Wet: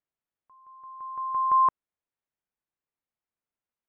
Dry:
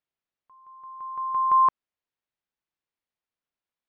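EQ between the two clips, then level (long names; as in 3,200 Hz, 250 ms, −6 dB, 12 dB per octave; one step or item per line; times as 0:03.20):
high-frequency loss of the air 400 metres
0.0 dB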